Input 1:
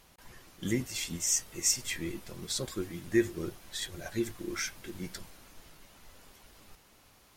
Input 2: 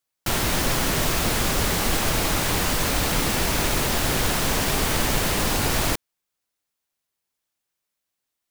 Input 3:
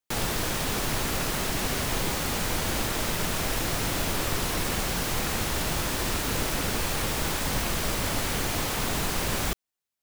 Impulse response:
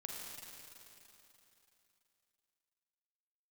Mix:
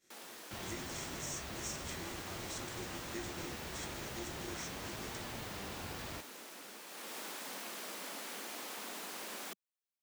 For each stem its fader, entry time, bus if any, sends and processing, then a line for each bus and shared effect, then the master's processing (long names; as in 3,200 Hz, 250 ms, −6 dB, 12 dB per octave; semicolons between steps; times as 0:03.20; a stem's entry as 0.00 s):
−13.0 dB, 0.00 s, bus A, no send, compressor on every frequency bin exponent 0.4; downward expander −24 dBFS
−16.5 dB, 0.25 s, no bus, no send, high-pass filter 52 Hz; parametric band 11,000 Hz −13 dB 0.95 octaves; flanger 0.4 Hz, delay 8 ms, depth 7 ms, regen +65%
0:06.86 −20.5 dB → 0:07.18 −10 dB, 0.00 s, bus A, no send, Butterworth high-pass 190 Hz 48 dB per octave
bus A: 0.0 dB, low-shelf EQ 180 Hz −12 dB; downward compressor 2 to 1, threshold −45 dBFS, peak gain reduction 7 dB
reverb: not used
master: no processing